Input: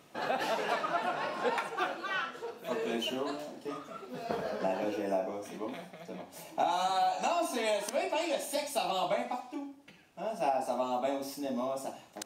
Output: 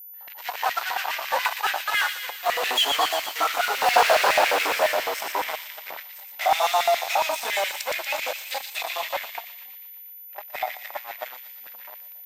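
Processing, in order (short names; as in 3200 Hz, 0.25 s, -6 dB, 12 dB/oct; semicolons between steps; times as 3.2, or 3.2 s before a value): Doppler pass-by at 4.09, 28 m/s, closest 6.3 m; AGC gain up to 11 dB; in parallel at -7 dB: fuzz box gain 42 dB, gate -48 dBFS; on the sum: LFO high-pass square 7.2 Hz 840–2100 Hz; on a send: thin delay 0.118 s, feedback 63%, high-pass 2700 Hz, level -4.5 dB; on the sum: whine 14000 Hz -40 dBFS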